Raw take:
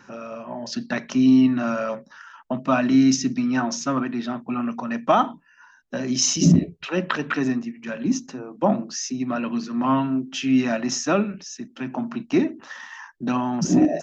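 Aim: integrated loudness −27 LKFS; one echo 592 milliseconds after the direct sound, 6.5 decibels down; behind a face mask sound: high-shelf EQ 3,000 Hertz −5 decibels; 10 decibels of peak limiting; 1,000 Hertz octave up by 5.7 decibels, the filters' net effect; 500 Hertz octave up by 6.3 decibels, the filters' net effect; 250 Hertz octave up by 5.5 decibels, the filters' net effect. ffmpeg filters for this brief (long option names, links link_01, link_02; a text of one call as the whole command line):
ffmpeg -i in.wav -af "equalizer=frequency=250:width_type=o:gain=4.5,equalizer=frequency=500:width_type=o:gain=5.5,equalizer=frequency=1000:width_type=o:gain=6,alimiter=limit=-9.5dB:level=0:latency=1,highshelf=frequency=3000:gain=-5,aecho=1:1:592:0.473,volume=-6.5dB" out.wav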